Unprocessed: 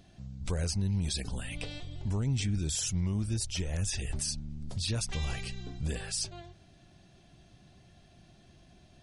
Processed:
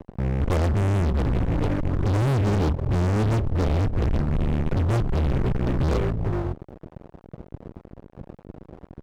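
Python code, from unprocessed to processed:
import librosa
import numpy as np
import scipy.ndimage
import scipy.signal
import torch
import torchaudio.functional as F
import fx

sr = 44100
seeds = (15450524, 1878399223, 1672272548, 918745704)

y = scipy.signal.sosfilt(scipy.signal.butter(12, 570.0, 'lowpass', fs=sr, output='sos'), x)
y = fx.fuzz(y, sr, gain_db=49.0, gate_db=-55.0)
y = y * 10.0 ** (-6.5 / 20.0)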